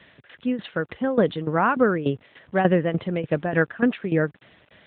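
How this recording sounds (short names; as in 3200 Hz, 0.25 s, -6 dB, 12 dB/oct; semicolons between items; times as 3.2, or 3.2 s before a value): tremolo saw down 3.4 Hz, depth 80%; a quantiser's noise floor 10-bit, dither none; AMR-NB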